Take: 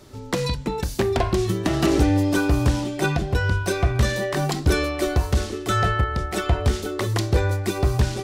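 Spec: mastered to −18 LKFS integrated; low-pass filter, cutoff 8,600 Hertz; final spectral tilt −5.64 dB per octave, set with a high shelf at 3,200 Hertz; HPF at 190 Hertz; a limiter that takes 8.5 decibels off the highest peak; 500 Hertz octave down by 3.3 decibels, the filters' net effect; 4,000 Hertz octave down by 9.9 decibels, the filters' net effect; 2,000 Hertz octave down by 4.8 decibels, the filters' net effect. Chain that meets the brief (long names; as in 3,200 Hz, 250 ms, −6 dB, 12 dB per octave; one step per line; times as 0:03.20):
high-pass filter 190 Hz
low-pass filter 8,600 Hz
parametric band 500 Hz −4 dB
parametric band 2,000 Hz −3.5 dB
high-shelf EQ 3,200 Hz −4.5 dB
parametric band 4,000 Hz −8 dB
level +12 dB
brickwall limiter −7.5 dBFS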